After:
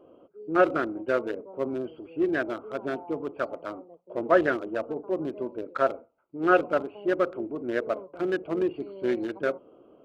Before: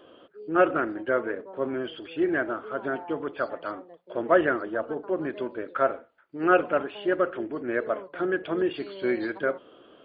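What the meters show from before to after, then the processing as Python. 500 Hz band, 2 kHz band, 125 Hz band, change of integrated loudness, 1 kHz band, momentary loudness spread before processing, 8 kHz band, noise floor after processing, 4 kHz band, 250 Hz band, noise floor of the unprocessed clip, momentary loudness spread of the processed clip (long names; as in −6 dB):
−0.5 dB, −2.0 dB, 0.0 dB, −0.5 dB, −1.0 dB, 12 LU, can't be measured, −57 dBFS, −3.5 dB, −0.5 dB, −55 dBFS, 12 LU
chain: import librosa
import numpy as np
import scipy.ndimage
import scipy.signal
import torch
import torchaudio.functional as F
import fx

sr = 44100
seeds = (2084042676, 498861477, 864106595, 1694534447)

y = fx.wiener(x, sr, points=25)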